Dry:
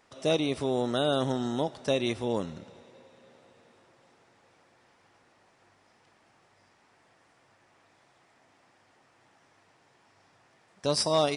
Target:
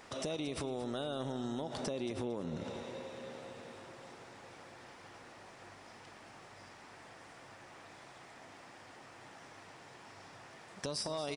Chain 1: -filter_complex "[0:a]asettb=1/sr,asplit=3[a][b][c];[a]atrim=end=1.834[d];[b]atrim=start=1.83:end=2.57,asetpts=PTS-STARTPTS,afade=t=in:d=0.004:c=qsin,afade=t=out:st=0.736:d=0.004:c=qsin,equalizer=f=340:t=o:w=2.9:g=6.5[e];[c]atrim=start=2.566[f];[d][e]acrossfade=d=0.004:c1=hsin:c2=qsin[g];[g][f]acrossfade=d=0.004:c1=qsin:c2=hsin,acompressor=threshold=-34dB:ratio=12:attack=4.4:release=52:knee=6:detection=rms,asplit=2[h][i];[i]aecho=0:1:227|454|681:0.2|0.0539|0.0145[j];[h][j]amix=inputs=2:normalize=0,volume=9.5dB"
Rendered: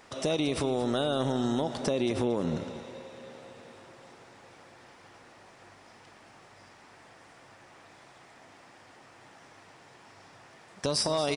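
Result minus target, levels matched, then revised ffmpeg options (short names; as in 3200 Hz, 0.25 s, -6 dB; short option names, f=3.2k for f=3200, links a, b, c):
compressor: peak gain reduction -10 dB
-filter_complex "[0:a]asettb=1/sr,asplit=3[a][b][c];[a]atrim=end=1.834[d];[b]atrim=start=1.83:end=2.57,asetpts=PTS-STARTPTS,afade=t=in:d=0.004:c=qsin,afade=t=out:st=0.736:d=0.004:c=qsin,equalizer=f=340:t=o:w=2.9:g=6.5[e];[c]atrim=start=2.566[f];[d][e]acrossfade=d=0.004:c1=hsin:c2=qsin[g];[g][f]acrossfade=d=0.004:c1=qsin:c2=hsin,acompressor=threshold=-45dB:ratio=12:attack=4.4:release=52:knee=6:detection=rms,asplit=2[h][i];[i]aecho=0:1:227|454|681:0.2|0.0539|0.0145[j];[h][j]amix=inputs=2:normalize=0,volume=9.5dB"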